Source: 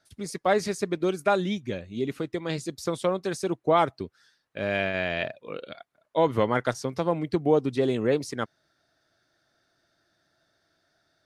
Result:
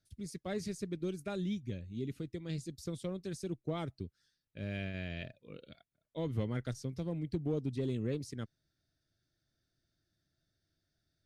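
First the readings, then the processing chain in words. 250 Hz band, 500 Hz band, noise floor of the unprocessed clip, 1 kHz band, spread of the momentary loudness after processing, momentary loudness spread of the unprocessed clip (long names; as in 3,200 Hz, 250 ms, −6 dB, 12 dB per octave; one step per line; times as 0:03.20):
−9.0 dB, −16.0 dB, −73 dBFS, −23.0 dB, 12 LU, 13 LU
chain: guitar amp tone stack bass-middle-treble 10-0-1
in parallel at −4.5 dB: hard clipping −38.5 dBFS, distortion −18 dB
on the sum: level +5.5 dB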